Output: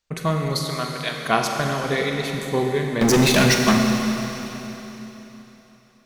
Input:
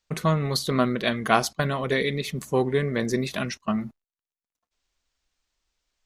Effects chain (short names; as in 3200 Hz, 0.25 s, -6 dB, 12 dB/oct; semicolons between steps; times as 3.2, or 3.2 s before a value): 0.67–1.26 HPF 1200 Hz 6 dB/oct; 3.01–3.78 sample leveller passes 5; Schroeder reverb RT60 3.6 s, combs from 32 ms, DRR 2 dB